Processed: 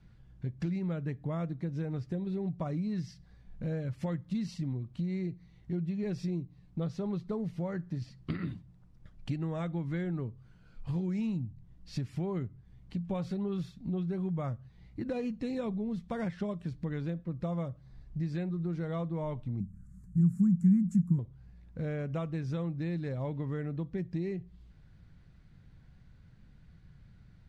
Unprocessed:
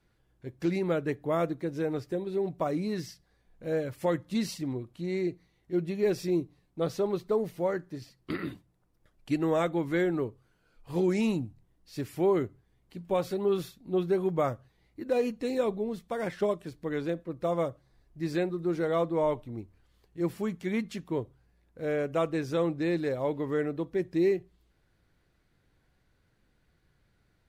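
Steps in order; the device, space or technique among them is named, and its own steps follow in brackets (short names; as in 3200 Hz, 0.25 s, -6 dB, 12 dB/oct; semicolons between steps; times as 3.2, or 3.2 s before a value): jukebox (LPF 6300 Hz 12 dB/oct; resonant low shelf 250 Hz +10.5 dB, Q 1.5; compressor 5:1, threshold -36 dBFS, peak gain reduction 17 dB); 19.6–21.19 EQ curve 100 Hz 0 dB, 190 Hz +12 dB, 580 Hz -25 dB, 1400 Hz -4 dB, 3200 Hz -28 dB, 4900 Hz -16 dB, 7300 Hz +10 dB; gain +3 dB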